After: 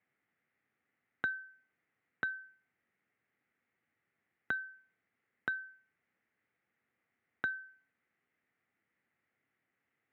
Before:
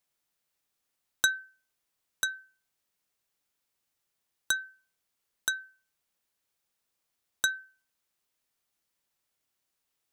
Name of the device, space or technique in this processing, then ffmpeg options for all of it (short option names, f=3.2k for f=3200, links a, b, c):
bass amplifier: -af "acompressor=threshold=-37dB:ratio=4,highpass=f=86:w=0.5412,highpass=f=86:w=1.3066,equalizer=f=240:t=q:w=4:g=4,equalizer=f=600:t=q:w=4:g=-5,equalizer=f=990:t=q:w=4:g=-9,equalizer=f=2k:t=q:w=4:g=8,lowpass=f=2.1k:w=0.5412,lowpass=f=2.1k:w=1.3066,volume=6dB"